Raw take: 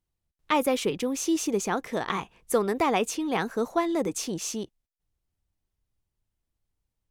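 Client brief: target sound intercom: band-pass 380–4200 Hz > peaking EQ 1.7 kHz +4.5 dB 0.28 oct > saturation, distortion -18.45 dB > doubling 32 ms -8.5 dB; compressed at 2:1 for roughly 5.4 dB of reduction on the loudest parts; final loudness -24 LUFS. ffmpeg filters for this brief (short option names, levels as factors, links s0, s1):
-filter_complex "[0:a]acompressor=threshold=0.0355:ratio=2,highpass=380,lowpass=4200,equalizer=f=1700:t=o:w=0.28:g=4.5,asoftclip=threshold=0.0944,asplit=2[s0][s1];[s1]adelay=32,volume=0.376[s2];[s0][s2]amix=inputs=2:normalize=0,volume=3.35"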